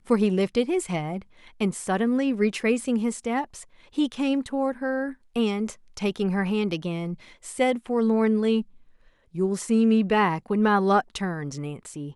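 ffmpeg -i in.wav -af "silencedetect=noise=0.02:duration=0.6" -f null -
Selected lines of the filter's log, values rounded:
silence_start: 8.62
silence_end: 9.35 | silence_duration: 0.73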